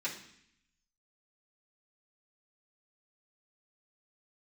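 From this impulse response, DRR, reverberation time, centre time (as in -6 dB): -9.5 dB, 0.65 s, 21 ms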